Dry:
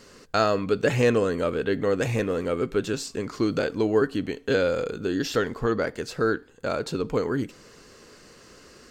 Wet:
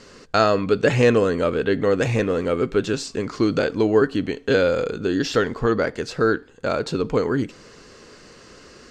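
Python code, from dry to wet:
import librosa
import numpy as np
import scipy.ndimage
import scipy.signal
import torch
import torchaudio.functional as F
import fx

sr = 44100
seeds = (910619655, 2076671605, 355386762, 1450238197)

y = scipy.signal.sosfilt(scipy.signal.butter(2, 7200.0, 'lowpass', fs=sr, output='sos'), x)
y = y * 10.0 ** (4.5 / 20.0)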